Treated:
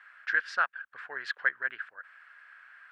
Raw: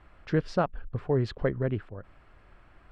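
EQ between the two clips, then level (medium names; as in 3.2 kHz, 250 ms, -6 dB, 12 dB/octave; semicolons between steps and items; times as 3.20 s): resonant high-pass 1.6 kHz, resonance Q 6.8; 0.0 dB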